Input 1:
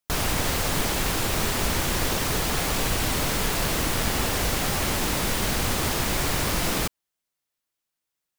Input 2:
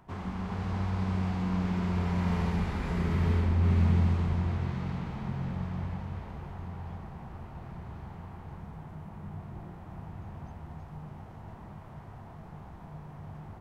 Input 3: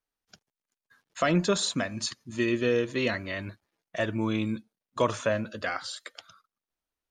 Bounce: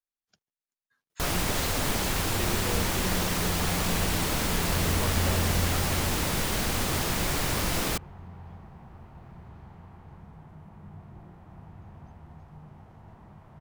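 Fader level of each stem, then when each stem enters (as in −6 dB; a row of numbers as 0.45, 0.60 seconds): −3.0, −4.5, −13.0 decibels; 1.10, 1.60, 0.00 seconds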